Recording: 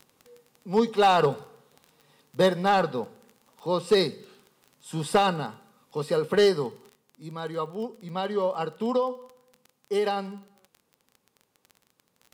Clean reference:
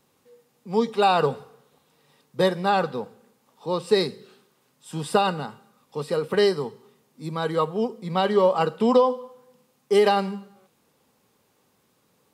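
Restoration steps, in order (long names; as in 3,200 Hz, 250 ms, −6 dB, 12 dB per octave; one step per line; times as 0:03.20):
clipped peaks rebuilt −13 dBFS
click removal
level 0 dB, from 0:06.89 +7.5 dB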